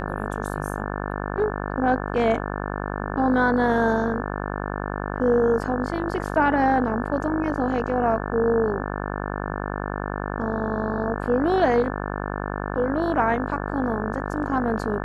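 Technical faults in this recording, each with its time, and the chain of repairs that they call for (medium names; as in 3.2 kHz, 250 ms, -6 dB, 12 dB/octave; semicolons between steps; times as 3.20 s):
buzz 50 Hz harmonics 35 -29 dBFS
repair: de-hum 50 Hz, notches 35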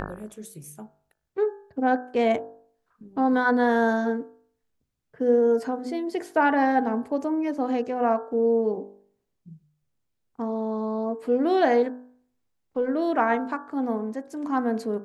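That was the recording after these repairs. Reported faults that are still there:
nothing left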